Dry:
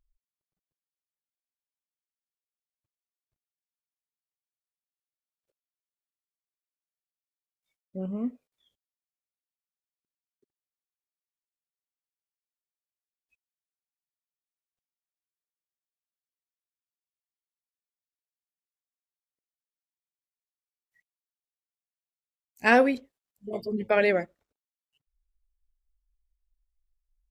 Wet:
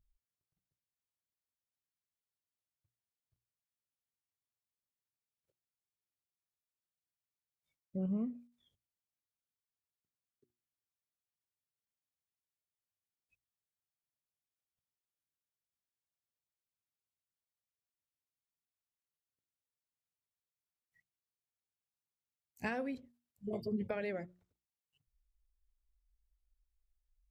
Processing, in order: compressor 5:1, threshold -33 dBFS, peak gain reduction 17 dB; bell 100 Hz +14.5 dB 2 oct; notches 60/120/180/240/300/360 Hz; gain -5.5 dB

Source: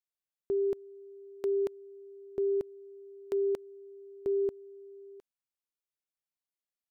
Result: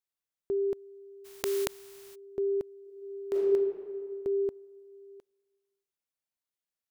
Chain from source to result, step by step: 1.24–2.14 spectral contrast lowered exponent 0.41; 2.81–3.43 reverb throw, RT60 2.1 s, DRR -5 dB

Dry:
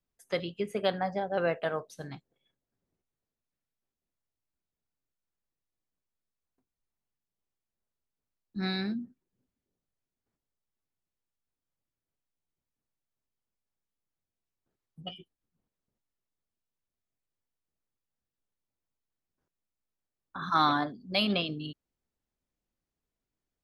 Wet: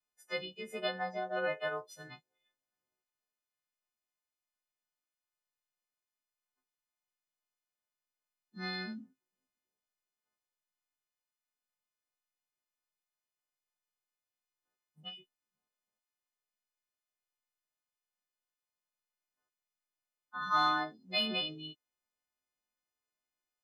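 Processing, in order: frequency quantiser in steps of 3 st; overdrive pedal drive 9 dB, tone 1800 Hz, clips at -9.5 dBFS; harmonic-percussive split percussive -13 dB; gain -6.5 dB

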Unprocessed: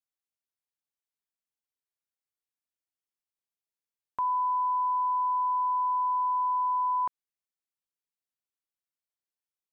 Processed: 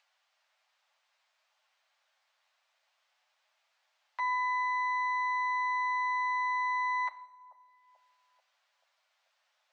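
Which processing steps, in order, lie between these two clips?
minimum comb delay 9.3 ms; steep high-pass 570 Hz 72 dB/oct; upward compressor, threshold -45 dBFS; air absorption 180 m; on a send: analogue delay 0.436 s, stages 2048, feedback 77%, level -10 dB; on the sum: two-slope reverb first 0.66 s, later 2.5 s, from -16 dB, DRR 11 dB

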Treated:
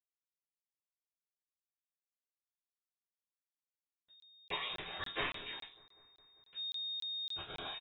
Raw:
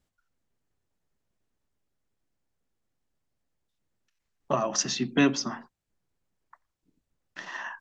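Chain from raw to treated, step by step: 4.69–7.5 block floating point 5-bit; spectral gate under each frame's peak -20 dB weak; high shelf 2700 Hz +10.5 dB; compressor 3:1, threshold -49 dBFS, peak gain reduction 18.5 dB; backlash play -55.5 dBFS; doubler 25 ms -11 dB; thin delay 0.198 s, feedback 73%, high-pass 2700 Hz, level -22 dB; reverb RT60 0.40 s, pre-delay 3 ms, DRR -5 dB; inverted band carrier 3700 Hz; crackling interface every 0.28 s, samples 1024, zero, from 0.56; gain +3.5 dB

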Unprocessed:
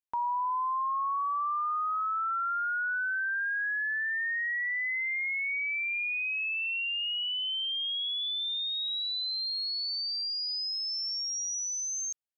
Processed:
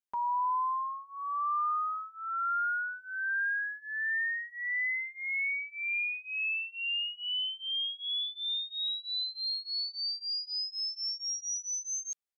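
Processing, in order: comb 5 ms, depth 93%; gain -5 dB

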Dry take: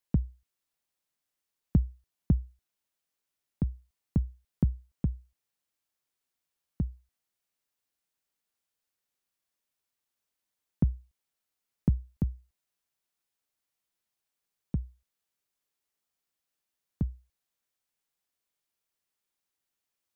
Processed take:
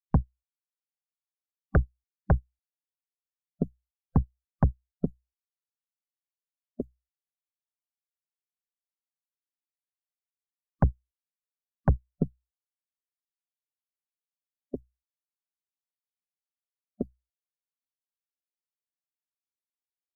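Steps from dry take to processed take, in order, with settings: added harmonics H 5 -9 dB, 6 -14 dB, 7 -10 dB, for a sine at -12.5 dBFS; spectral noise reduction 18 dB

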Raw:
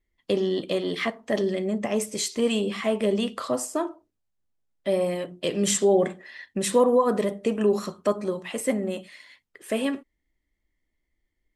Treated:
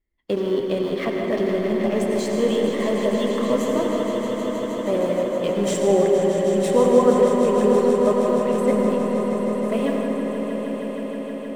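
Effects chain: 2.35–3.71 ripple EQ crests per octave 1.1, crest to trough 12 dB; in parallel at -7 dB: sample gate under -25 dBFS; on the sum: high shelf 2500 Hz -9.5 dB; swelling echo 0.157 s, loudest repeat 5, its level -11 dB; reverb RT60 3.9 s, pre-delay 78 ms, DRR 0.5 dB; gain -2 dB

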